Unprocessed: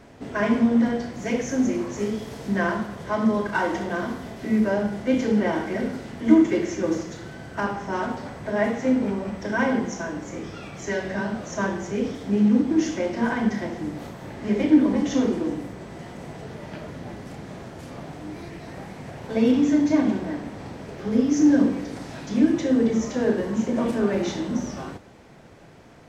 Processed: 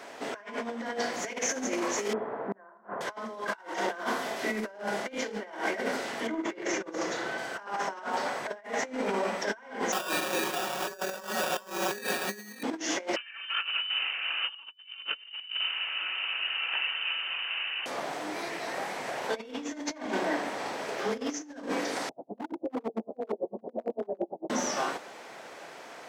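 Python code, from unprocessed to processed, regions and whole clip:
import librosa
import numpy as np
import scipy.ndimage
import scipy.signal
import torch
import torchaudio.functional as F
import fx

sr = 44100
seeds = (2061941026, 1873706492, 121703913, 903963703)

y = fx.chain(x, sr, fx.lowpass(hz=1400.0, slope=24),
    fx.gate_flip(shuts_db=-18.0, range_db=-34), at=(2.13, 3.01))
y = fx.chain(y, sr, fx.high_shelf(hz=4000.0, db=-10.5),
    fx.over_compress(threshold_db=-18.0, ratio=-0.5), at=(6.27, 7.38))
y = fx.chain(y, sr, fx.sample_hold(seeds[0], rate_hz=2100.0, jitter_pct=0),
    fx.comb(ms=5.4, depth=0.8), at=(9.92, 12.63))
y = fx.chain(y, sr, fx.highpass(hz=310.0, slope=24),
    fx.freq_invert(carrier_hz=3300), at=(13.16, 17.86))
y = fx.chain(y, sr, fx.ellip_lowpass(hz=740.0, order=4, stop_db=60),
    fx.clip_hard(threshold_db=-16.5),
    fx.tremolo_db(hz=8.9, depth_db=39), at=(22.09, 24.5))
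y = scipy.signal.sosfilt(scipy.signal.butter(2, 590.0, 'highpass', fs=sr, output='sos'), y)
y = fx.over_compress(y, sr, threshold_db=-36.0, ratio=-0.5)
y = y * librosa.db_to_amplitude(3.5)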